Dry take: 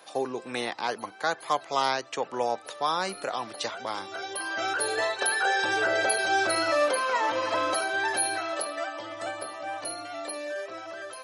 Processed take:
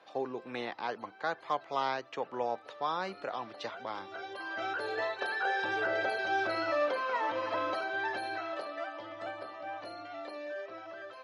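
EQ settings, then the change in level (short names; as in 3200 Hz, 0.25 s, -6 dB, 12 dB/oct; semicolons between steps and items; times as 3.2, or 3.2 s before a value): air absorption 210 m; -5.0 dB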